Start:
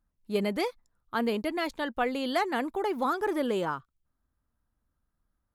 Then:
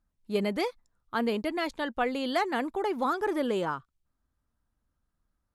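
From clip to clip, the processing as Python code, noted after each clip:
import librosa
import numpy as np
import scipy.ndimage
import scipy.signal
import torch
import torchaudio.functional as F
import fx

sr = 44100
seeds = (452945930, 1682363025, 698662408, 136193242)

y = scipy.signal.sosfilt(scipy.signal.butter(2, 11000.0, 'lowpass', fs=sr, output='sos'), x)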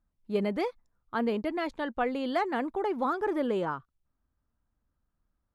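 y = fx.high_shelf(x, sr, hz=3300.0, db=-12.0)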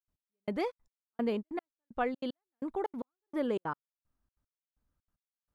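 y = fx.step_gate(x, sr, bpm=189, pattern='.x....xxx', floor_db=-60.0, edge_ms=4.5)
y = y * librosa.db_to_amplitude(-2.5)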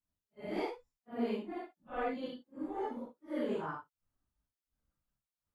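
y = fx.phase_scramble(x, sr, seeds[0], window_ms=200)
y = y * librosa.db_to_amplitude(-2.5)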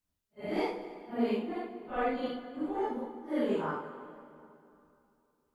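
y = fx.rev_plate(x, sr, seeds[1], rt60_s=2.8, hf_ratio=0.7, predelay_ms=0, drr_db=8.5)
y = y * librosa.db_to_amplitude(4.5)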